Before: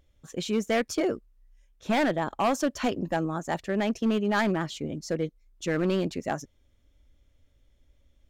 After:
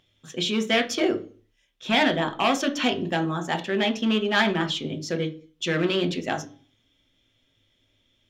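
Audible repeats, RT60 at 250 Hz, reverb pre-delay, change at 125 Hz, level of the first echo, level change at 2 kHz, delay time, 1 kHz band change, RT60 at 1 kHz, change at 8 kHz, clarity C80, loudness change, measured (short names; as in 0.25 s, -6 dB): none, 0.50 s, 3 ms, +2.0 dB, none, +7.0 dB, none, +3.0 dB, 0.40 s, +3.0 dB, 20.5 dB, +4.0 dB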